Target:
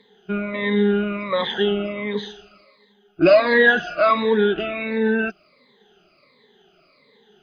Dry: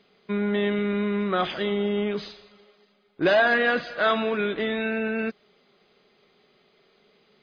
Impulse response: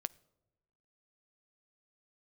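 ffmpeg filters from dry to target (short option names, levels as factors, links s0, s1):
-af "afftfilt=real='re*pow(10,22/40*sin(2*PI*(1*log(max(b,1)*sr/1024/100)/log(2)-(-1.4)*(pts-256)/sr)))':imag='im*pow(10,22/40*sin(2*PI*(1*log(max(b,1)*sr/1024/100)/log(2)-(-1.4)*(pts-256)/sr)))':win_size=1024:overlap=0.75"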